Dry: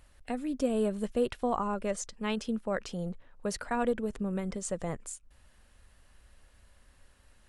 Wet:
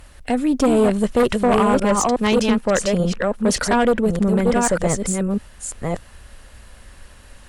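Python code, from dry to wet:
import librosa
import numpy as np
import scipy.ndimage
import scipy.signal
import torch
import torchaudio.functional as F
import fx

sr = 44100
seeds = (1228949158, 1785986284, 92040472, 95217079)

y = fx.reverse_delay(x, sr, ms=599, wet_db=-4)
y = fx.cheby_harmonics(y, sr, harmonics=(5,), levels_db=(-9,), full_scale_db=-15.0)
y = y * 10.0 ** (7.0 / 20.0)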